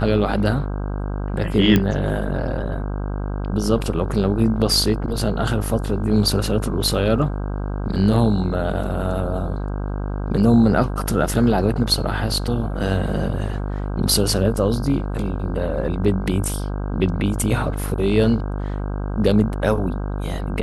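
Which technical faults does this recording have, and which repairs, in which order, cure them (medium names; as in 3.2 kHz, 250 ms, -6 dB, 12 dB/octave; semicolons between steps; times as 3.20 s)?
buzz 50 Hz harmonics 32 -25 dBFS
1.76 s: pop -5 dBFS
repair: de-click; de-hum 50 Hz, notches 32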